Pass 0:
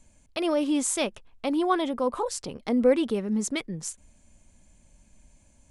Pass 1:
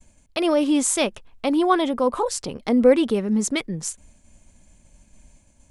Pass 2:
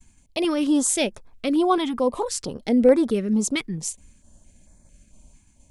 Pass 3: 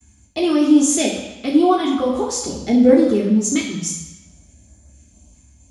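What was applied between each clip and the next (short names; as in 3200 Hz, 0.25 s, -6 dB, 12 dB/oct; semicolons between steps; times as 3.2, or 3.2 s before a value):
expander -54 dBFS; gain +5.5 dB
stepped notch 4.5 Hz 560–2900 Hz
reverb RT60 1.0 s, pre-delay 3 ms, DRR -3 dB; gain -6 dB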